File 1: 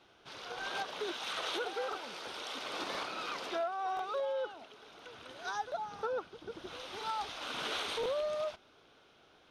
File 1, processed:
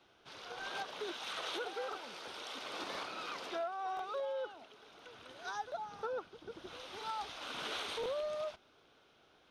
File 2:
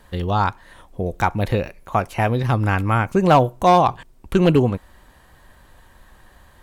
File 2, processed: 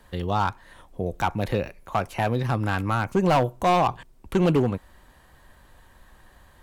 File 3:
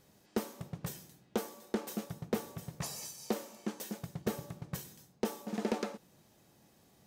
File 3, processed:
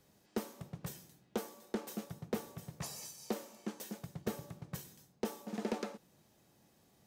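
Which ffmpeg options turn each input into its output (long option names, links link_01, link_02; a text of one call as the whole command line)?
ffmpeg -i in.wav -filter_complex "[0:a]acrossover=split=120[link_01][link_02];[link_01]alimiter=level_in=4dB:limit=-24dB:level=0:latency=1,volume=-4dB[link_03];[link_02]volume=11.5dB,asoftclip=hard,volume=-11.5dB[link_04];[link_03][link_04]amix=inputs=2:normalize=0,volume=-3.5dB" out.wav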